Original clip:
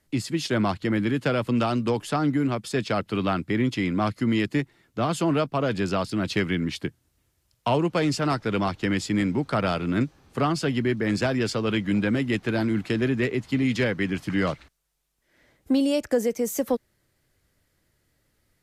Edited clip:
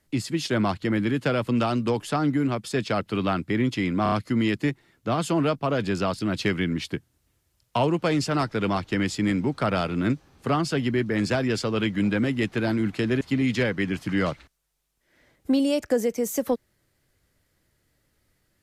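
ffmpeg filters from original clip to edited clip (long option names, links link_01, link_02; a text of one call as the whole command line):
ffmpeg -i in.wav -filter_complex "[0:a]asplit=5[link_01][link_02][link_03][link_04][link_05];[link_01]atrim=end=4.062[link_06];[link_02]atrim=start=4.028:end=4.062[link_07];[link_03]atrim=start=4.028:end=4.062[link_08];[link_04]atrim=start=4.028:end=13.122[link_09];[link_05]atrim=start=13.418[link_10];[link_06][link_07]acrossfade=duration=0.004:curve1=hsin:curve2=hsin[link_11];[link_11][link_08]acrossfade=duration=0.004:curve1=hsin:curve2=hsin[link_12];[link_12][link_09]acrossfade=duration=0.004:curve1=hsin:curve2=hsin[link_13];[link_13][link_10]acrossfade=duration=0.004:curve1=hsin:curve2=hsin" out.wav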